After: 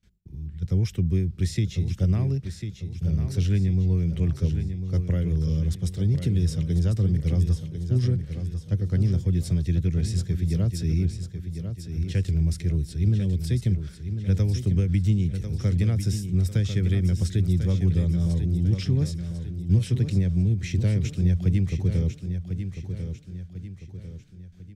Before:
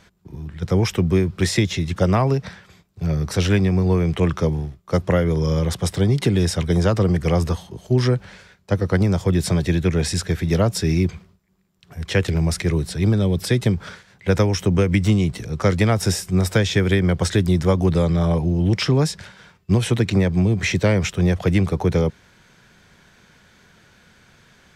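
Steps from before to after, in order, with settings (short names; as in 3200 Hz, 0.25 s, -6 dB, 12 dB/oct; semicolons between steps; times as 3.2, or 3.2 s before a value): gate with hold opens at -42 dBFS; passive tone stack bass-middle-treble 10-0-1; on a send: feedback echo 1.047 s, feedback 43%, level -8.5 dB; on the sum: gain +8.5 dB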